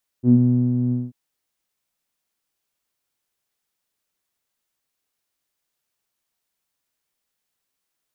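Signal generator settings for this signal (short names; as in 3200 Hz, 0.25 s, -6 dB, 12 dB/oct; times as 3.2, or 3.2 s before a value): synth note saw B2 12 dB/oct, low-pass 220 Hz, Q 5.6, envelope 0.5 oct, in 0.14 s, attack 55 ms, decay 0.44 s, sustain -6 dB, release 0.20 s, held 0.69 s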